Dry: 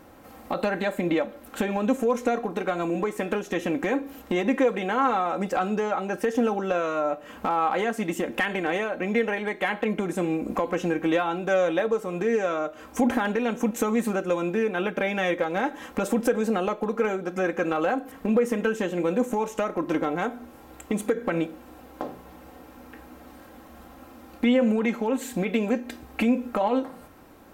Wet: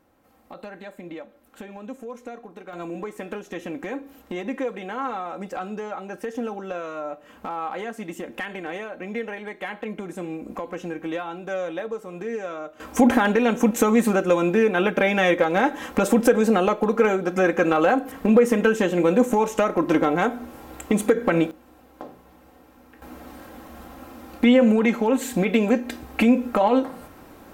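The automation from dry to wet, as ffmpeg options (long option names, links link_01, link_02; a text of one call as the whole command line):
ffmpeg -i in.wav -af "asetnsamples=nb_out_samples=441:pad=0,asendcmd='2.73 volume volume -6dB;12.8 volume volume 6dB;21.51 volume volume -5.5dB;23.02 volume volume 5dB',volume=-13dB" out.wav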